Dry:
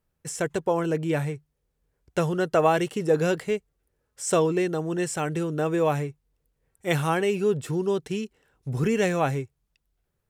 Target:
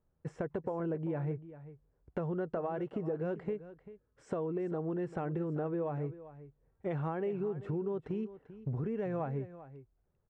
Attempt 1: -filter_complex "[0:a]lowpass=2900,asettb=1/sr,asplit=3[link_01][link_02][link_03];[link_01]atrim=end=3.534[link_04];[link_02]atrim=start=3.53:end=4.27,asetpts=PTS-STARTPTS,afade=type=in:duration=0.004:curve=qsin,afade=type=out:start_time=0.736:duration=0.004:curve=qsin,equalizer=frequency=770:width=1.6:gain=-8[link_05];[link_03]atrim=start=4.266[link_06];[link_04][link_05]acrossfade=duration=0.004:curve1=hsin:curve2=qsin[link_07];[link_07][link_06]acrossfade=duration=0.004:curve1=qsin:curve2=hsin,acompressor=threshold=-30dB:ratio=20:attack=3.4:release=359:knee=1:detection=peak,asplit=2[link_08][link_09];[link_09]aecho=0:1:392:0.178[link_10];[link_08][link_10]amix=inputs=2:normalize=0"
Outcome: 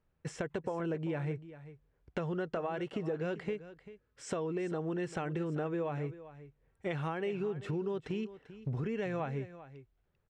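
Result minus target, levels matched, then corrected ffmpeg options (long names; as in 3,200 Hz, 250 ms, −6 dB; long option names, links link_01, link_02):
4,000 Hz band +14.5 dB
-filter_complex "[0:a]lowpass=1100,asettb=1/sr,asplit=3[link_01][link_02][link_03];[link_01]atrim=end=3.534[link_04];[link_02]atrim=start=3.53:end=4.27,asetpts=PTS-STARTPTS,afade=type=in:duration=0.004:curve=qsin,afade=type=out:start_time=0.736:duration=0.004:curve=qsin,equalizer=frequency=770:width=1.6:gain=-8[link_05];[link_03]atrim=start=4.266[link_06];[link_04][link_05]acrossfade=duration=0.004:curve1=hsin:curve2=qsin[link_07];[link_07][link_06]acrossfade=duration=0.004:curve1=qsin:curve2=hsin,acompressor=threshold=-30dB:ratio=20:attack=3.4:release=359:knee=1:detection=peak,asplit=2[link_08][link_09];[link_09]aecho=0:1:392:0.178[link_10];[link_08][link_10]amix=inputs=2:normalize=0"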